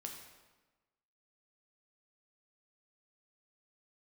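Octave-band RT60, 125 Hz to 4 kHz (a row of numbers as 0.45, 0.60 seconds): 1.3, 1.3, 1.2, 1.2, 1.1, 0.95 seconds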